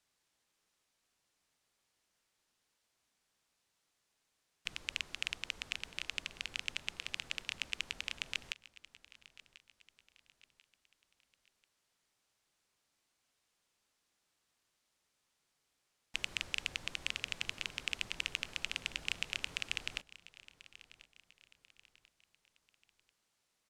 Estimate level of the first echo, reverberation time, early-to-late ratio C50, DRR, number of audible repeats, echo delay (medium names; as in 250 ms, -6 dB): -19.0 dB, no reverb, no reverb, no reverb, 3, 1040 ms